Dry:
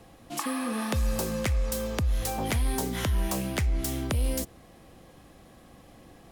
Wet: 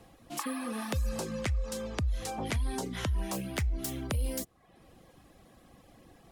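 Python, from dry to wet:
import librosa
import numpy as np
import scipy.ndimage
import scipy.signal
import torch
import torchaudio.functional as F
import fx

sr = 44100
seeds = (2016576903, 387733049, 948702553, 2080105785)

y = fx.dereverb_blind(x, sr, rt60_s=0.66)
y = fx.lowpass(y, sr, hz=8700.0, slope=12, at=(1.09, 3.33))
y = y * librosa.db_to_amplitude(-3.5)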